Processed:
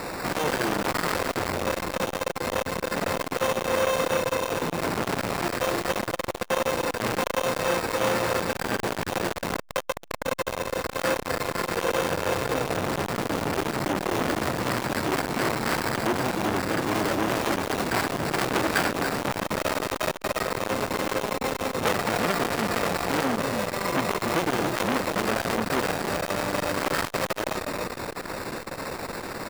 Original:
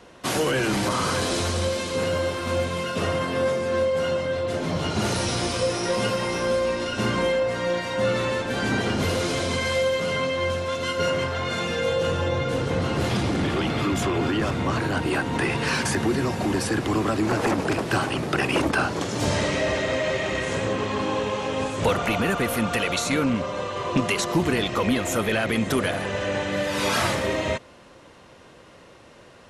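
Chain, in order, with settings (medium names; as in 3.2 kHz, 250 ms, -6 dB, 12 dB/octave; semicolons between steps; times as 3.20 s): one-bit delta coder 32 kbps, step -29 dBFS; high-pass 120 Hz 12 dB/octave; treble shelf 4.4 kHz +3.5 dB; sample-and-hold 14×; on a send: frequency-shifting echo 285 ms, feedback 49%, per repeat -31 Hz, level -8 dB; on the sum: transformer saturation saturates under 1.8 kHz; trim +3 dB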